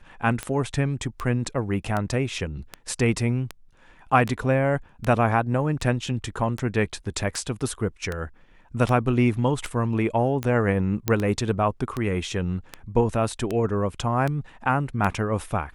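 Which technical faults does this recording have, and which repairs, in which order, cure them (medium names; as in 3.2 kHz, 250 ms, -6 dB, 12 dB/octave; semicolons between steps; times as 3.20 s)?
tick 78 rpm -14 dBFS
11.08 s: pop -7 dBFS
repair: de-click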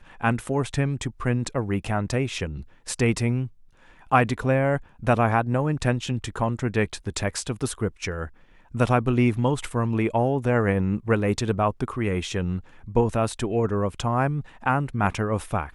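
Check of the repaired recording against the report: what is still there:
nothing left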